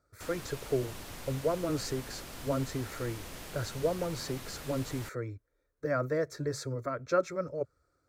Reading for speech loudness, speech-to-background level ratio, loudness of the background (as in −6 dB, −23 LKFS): −35.0 LKFS, 9.5 dB, −44.5 LKFS